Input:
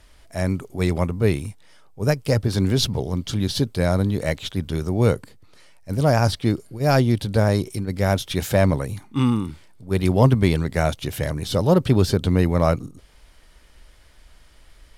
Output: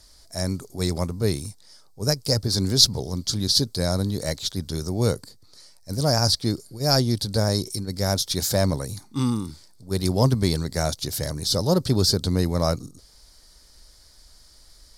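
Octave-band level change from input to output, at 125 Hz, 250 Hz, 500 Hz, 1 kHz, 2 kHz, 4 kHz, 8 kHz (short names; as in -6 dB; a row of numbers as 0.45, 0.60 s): -4.0, -4.0, -4.0, -4.5, -7.0, +7.5, +8.0 dB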